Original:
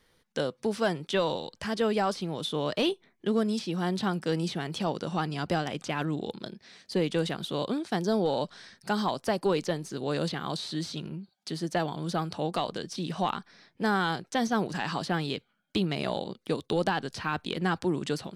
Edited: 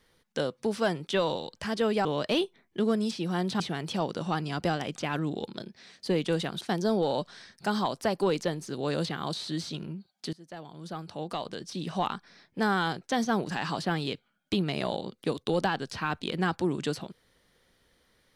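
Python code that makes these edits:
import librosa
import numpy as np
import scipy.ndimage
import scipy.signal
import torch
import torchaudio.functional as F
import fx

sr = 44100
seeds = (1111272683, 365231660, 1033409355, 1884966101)

y = fx.edit(x, sr, fx.cut(start_s=2.05, length_s=0.48),
    fx.cut(start_s=4.08, length_s=0.38),
    fx.cut(start_s=7.47, length_s=0.37),
    fx.fade_in_from(start_s=11.56, length_s=1.8, floor_db=-22.5), tone=tone)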